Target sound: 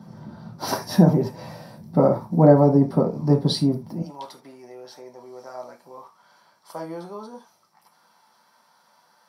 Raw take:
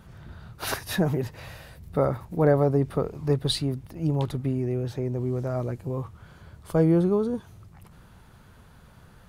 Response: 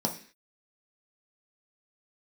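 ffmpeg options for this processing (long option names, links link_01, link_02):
-filter_complex "[0:a]asetnsamples=nb_out_samples=441:pad=0,asendcmd='4.02 highpass f 1200',highpass=140[link_01];[1:a]atrim=start_sample=2205,atrim=end_sample=3969[link_02];[link_01][link_02]afir=irnorm=-1:irlink=0,volume=-4dB"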